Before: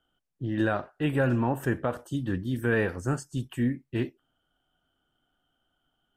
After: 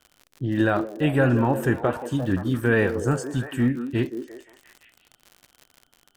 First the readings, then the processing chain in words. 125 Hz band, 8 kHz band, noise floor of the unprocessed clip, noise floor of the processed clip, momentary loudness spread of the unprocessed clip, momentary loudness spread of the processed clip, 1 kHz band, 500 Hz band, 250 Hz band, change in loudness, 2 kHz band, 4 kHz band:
+5.0 dB, +5.5 dB, -78 dBFS, -66 dBFS, 7 LU, 8 LU, +5.5 dB, +6.0 dB, +5.5 dB, +5.5 dB, +5.0 dB, +5.0 dB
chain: repeats whose band climbs or falls 174 ms, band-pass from 350 Hz, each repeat 0.7 oct, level -6 dB; crackle 80 per s -40 dBFS; trim +5 dB

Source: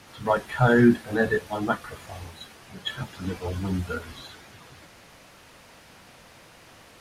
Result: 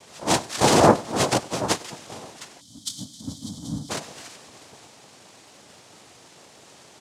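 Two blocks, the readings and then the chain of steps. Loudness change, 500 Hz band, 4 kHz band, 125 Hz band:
+2.0 dB, +2.0 dB, +9.0 dB, -2.0 dB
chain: noise-vocoded speech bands 2; feedback delay 97 ms, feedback 45%, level -21.5 dB; time-frequency box 2.61–3.90 s, 320–3000 Hz -23 dB; trim +1.5 dB

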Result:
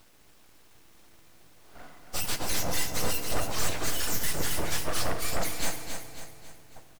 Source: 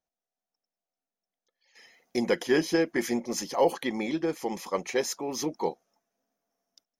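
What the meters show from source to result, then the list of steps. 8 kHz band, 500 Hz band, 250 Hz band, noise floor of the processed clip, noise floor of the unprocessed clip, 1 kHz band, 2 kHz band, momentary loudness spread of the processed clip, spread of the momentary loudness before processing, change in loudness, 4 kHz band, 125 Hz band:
+6.5 dB, -9.5 dB, -10.0 dB, -56 dBFS, under -85 dBFS, -2.0 dB, 0.0 dB, 10 LU, 8 LU, -1.5 dB, +5.0 dB, +6.0 dB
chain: spectrum inverted on a logarithmic axis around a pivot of 1.4 kHz; gain riding 0.5 s; Chebyshev shaper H 5 -7 dB, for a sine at -16 dBFS; added noise pink -55 dBFS; full-wave rectifier; feedback delay 274 ms, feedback 46%, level -7 dB; FDN reverb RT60 2.5 s, low-frequency decay 1.45×, high-frequency decay 0.5×, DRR 8.5 dB; trim -2.5 dB

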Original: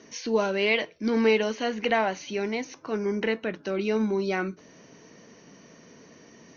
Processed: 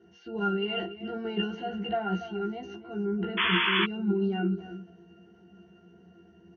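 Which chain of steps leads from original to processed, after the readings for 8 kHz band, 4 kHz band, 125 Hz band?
no reading, +3.5 dB, +4.0 dB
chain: transient shaper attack -2 dB, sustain +10 dB; pitch-class resonator F, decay 0.19 s; echo from a far wall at 49 m, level -13 dB; painted sound noise, 3.37–3.85 s, 910–3500 Hz -35 dBFS; doubling 15 ms -2 dB; trim +7 dB

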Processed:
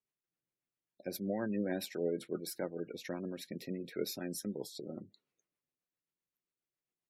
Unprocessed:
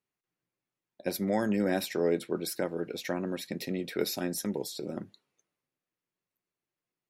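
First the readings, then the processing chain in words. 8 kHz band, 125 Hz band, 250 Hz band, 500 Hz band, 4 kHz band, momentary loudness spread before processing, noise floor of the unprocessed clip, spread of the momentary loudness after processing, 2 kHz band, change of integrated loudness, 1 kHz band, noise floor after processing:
-7.5 dB, -7.0 dB, -7.0 dB, -7.5 dB, -7.5 dB, 9 LU, under -85 dBFS, 9 LU, -9.0 dB, -7.5 dB, -11.0 dB, under -85 dBFS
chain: spectral gate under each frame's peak -25 dB strong; rotary cabinet horn 7.5 Hz; trim -5.5 dB

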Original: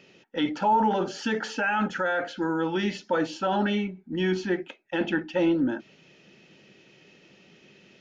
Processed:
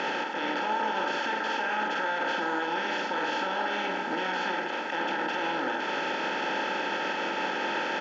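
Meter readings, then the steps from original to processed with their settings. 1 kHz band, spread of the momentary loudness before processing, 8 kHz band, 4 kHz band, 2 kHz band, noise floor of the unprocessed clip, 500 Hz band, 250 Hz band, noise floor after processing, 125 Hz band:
+1.0 dB, 7 LU, no reading, +4.0 dB, +3.5 dB, -58 dBFS, -3.5 dB, -9.0 dB, -32 dBFS, -13.0 dB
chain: spectral levelling over time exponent 0.2; high-pass 1.1 kHz 6 dB/octave; peak limiter -18.5 dBFS, peak gain reduction 10.5 dB; distance through air 100 m; doubling 47 ms -6 dB; trim -2.5 dB

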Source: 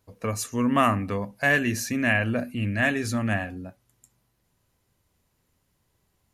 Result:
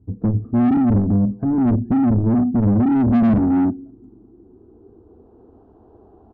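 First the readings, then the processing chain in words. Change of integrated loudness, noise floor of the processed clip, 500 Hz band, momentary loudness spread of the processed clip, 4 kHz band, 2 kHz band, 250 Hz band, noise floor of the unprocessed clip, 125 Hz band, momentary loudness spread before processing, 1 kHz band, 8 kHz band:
+7.5 dB, -51 dBFS, +1.0 dB, 5 LU, under -15 dB, under -15 dB, +12.5 dB, -72 dBFS, +10.0 dB, 10 LU, 0.0 dB, under -40 dB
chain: speakerphone echo 200 ms, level -28 dB; low-pass that closes with the level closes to 340 Hz, closed at -23.5 dBFS; static phaser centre 560 Hz, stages 6; low-pass sweep 160 Hz -> 590 Hz, 2.55–5.67 s; peaking EQ 1 kHz -8.5 dB 0.4 oct; overdrive pedal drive 34 dB, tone 1.2 kHz, clips at -18 dBFS; bass shelf 180 Hz +9 dB; transformer saturation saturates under 100 Hz; trim +6.5 dB

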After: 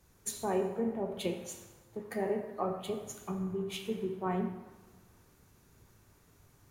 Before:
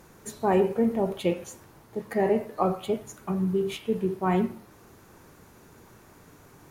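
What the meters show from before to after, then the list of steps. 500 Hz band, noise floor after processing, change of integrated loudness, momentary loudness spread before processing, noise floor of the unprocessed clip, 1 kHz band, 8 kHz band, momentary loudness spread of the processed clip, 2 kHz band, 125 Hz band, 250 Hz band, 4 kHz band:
-8.5 dB, -64 dBFS, -9.0 dB, 13 LU, -54 dBFS, -9.0 dB, +1.5 dB, 13 LU, -8.0 dB, -9.0 dB, -9.0 dB, -3.0 dB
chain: compression 2.5:1, threshold -35 dBFS, peak gain reduction 11.5 dB; plate-style reverb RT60 1.9 s, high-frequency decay 0.75×, DRR 5.5 dB; three bands expanded up and down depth 70%; trim -1.5 dB

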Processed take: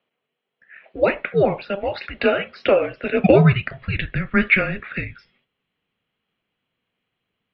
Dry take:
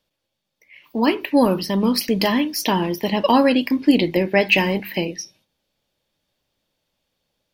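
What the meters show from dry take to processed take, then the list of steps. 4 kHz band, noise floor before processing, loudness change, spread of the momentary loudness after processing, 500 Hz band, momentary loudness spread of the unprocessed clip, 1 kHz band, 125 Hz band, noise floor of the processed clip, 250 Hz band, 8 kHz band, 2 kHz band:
-9.5 dB, -78 dBFS, -1.0 dB, 14 LU, +1.5 dB, 10 LU, -5.0 dB, +7.0 dB, -80 dBFS, -5.5 dB, under -40 dB, +2.0 dB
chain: high-pass sweep 850 Hz -> 190 Hz, 3.08–4.25 s; mistuned SSB -390 Hz 540–3500 Hz; trim +1 dB

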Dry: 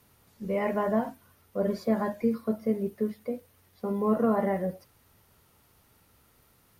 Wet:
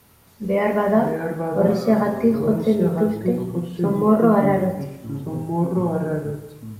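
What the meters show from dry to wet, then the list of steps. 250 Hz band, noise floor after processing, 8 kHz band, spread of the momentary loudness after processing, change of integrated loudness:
+10.5 dB, -52 dBFS, no reading, 13 LU, +9.0 dB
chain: ever faster or slower copies 431 ms, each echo -4 st, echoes 3, each echo -6 dB; plate-style reverb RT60 1.1 s, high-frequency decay 0.95×, DRR 7 dB; trim +8 dB

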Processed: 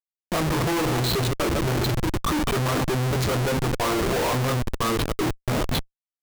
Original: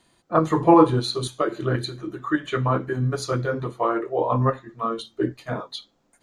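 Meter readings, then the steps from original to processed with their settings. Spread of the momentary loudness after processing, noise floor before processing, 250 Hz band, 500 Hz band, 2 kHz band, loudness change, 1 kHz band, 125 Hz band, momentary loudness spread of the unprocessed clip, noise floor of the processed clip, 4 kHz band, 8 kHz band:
4 LU, -65 dBFS, -2.5 dB, -2.5 dB, +4.0 dB, -1.0 dB, -3.5 dB, +1.5 dB, 15 LU, under -85 dBFS, +5.0 dB, +9.0 dB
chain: chunks repeated in reverse 125 ms, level -11 dB; Schmitt trigger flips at -31 dBFS

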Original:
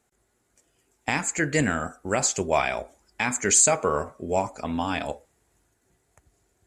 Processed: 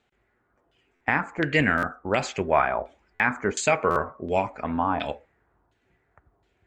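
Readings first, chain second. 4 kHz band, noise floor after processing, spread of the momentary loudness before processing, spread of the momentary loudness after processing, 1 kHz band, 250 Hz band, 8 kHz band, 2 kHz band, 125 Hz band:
-2.5 dB, -71 dBFS, 13 LU, 9 LU, +3.0 dB, +0.5 dB, -15.5 dB, +3.5 dB, 0.0 dB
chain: LFO low-pass saw down 1.4 Hz 930–3500 Hz; buffer glitch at 0.95/1.77/3.14/3.90 s, samples 512, times 4

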